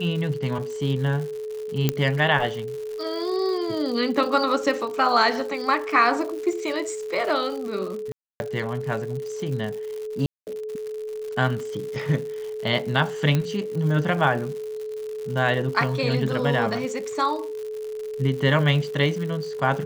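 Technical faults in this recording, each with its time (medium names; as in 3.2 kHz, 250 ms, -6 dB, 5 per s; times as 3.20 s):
crackle 170 per s -32 dBFS
whine 430 Hz -29 dBFS
1.89 s: pop -6 dBFS
8.12–8.40 s: dropout 281 ms
10.26–10.47 s: dropout 209 ms
13.35 s: pop -10 dBFS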